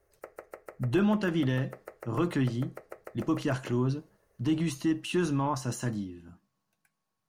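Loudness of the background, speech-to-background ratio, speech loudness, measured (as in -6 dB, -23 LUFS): -48.5 LUFS, 18.0 dB, -30.5 LUFS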